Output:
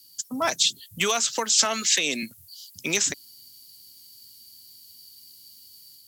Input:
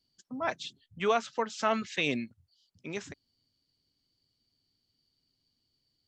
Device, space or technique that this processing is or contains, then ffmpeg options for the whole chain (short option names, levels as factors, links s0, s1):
FM broadcast chain: -filter_complex "[0:a]highpass=46,dynaudnorm=f=270:g=3:m=1.5,acrossover=split=150|880|5300[s0][s1][s2][s3];[s0]acompressor=threshold=0.00126:ratio=4[s4];[s1]acompressor=threshold=0.02:ratio=4[s5];[s2]acompressor=threshold=0.0158:ratio=4[s6];[s3]acompressor=threshold=0.00251:ratio=4[s7];[s4][s5][s6][s7]amix=inputs=4:normalize=0,aemphasis=mode=production:type=75fm,alimiter=limit=0.0794:level=0:latency=1:release=260,asoftclip=type=hard:threshold=0.0631,lowpass=f=15000:w=0.5412,lowpass=f=15000:w=1.3066,aemphasis=mode=production:type=75fm,asettb=1/sr,asplit=3[s8][s9][s10];[s8]atrim=end=1.654[s11];[s9]atrim=start=1.65:end=2.23,asetpts=PTS-STARTPTS,afade=t=in:d=0.004:c=qsin,afade=t=out:st=0.576:d=0.004:c=qsin,highpass=200[s12];[s10]atrim=start=2.226[s13];[s11][s12]acrossfade=d=0.004:c1=hsin:c2=qsin[s14];[s14][s13]acrossfade=d=0.004:c1=qsin:c2=hsin,volume=2.66"